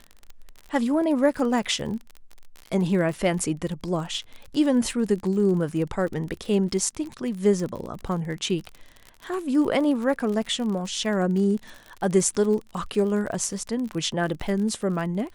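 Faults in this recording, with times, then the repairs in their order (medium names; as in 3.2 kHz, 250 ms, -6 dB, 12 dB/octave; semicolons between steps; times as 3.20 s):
crackle 42 per s -31 dBFS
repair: de-click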